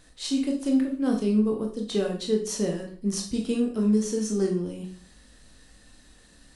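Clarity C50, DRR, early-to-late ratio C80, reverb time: 7.5 dB, 1.0 dB, 12.0 dB, 0.45 s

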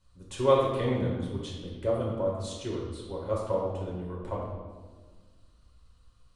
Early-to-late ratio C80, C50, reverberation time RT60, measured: 3.0 dB, 1.0 dB, 1.5 s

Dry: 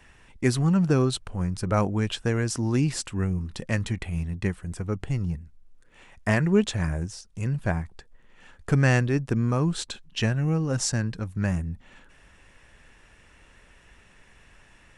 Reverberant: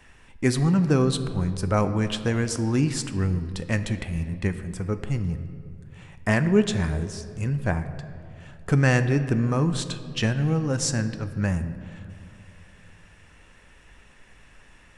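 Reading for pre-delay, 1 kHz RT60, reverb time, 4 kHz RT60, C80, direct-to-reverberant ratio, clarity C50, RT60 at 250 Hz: 4 ms, 2.2 s, 2.5 s, 1.3 s, 12.5 dB, 9.5 dB, 11.5 dB, 2.9 s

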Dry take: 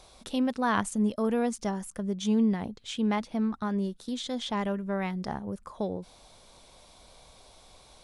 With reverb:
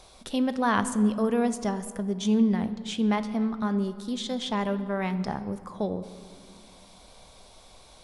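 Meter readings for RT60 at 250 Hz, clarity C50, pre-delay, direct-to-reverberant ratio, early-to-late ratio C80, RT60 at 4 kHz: 3.1 s, 13.0 dB, 4 ms, 11.0 dB, 14.0 dB, 1.2 s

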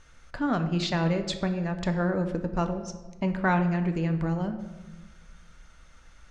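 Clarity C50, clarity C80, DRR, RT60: 10.0 dB, 12.0 dB, 6.5 dB, 1.2 s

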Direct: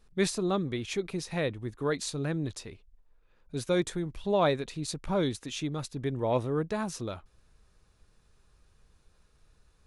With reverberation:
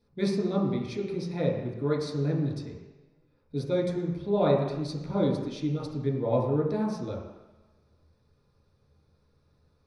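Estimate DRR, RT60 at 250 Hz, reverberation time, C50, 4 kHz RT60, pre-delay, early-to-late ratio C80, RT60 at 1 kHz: -5.0 dB, 1.0 s, 1.1 s, 2.5 dB, 1.3 s, 3 ms, 5.5 dB, 1.2 s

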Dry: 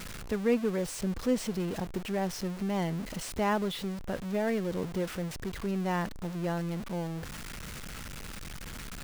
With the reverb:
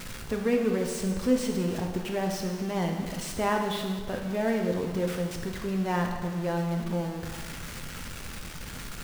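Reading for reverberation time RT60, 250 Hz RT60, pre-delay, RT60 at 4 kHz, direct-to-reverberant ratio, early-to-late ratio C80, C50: 1.5 s, 1.5 s, 5 ms, 1.4 s, 2.0 dB, 6.5 dB, 4.5 dB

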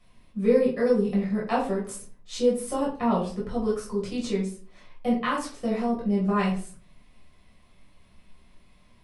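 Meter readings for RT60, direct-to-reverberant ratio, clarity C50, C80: 0.40 s, -6.0 dB, 7.0 dB, 11.5 dB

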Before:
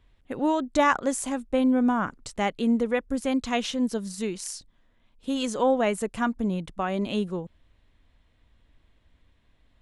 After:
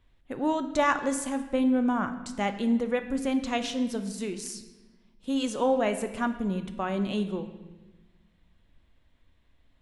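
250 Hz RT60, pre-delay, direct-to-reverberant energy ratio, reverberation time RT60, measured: 1.7 s, 3 ms, 8.0 dB, 1.2 s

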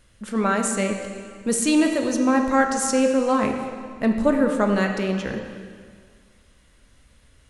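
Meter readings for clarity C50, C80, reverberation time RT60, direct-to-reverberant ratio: 5.0 dB, 6.5 dB, 1.8 s, 3.5 dB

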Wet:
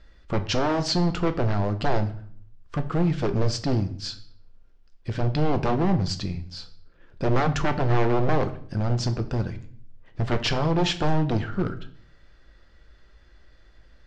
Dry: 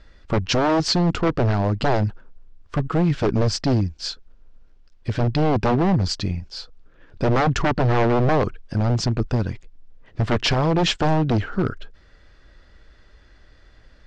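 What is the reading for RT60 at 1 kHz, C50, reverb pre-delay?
0.50 s, 14.0 dB, 6 ms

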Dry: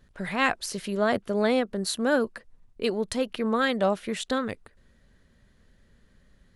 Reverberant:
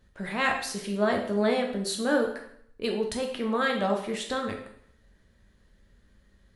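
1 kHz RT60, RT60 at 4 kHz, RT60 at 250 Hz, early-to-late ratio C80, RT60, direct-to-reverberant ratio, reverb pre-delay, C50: 0.65 s, 0.60 s, 0.65 s, 10.0 dB, 0.65 s, 1.5 dB, 5 ms, 6.5 dB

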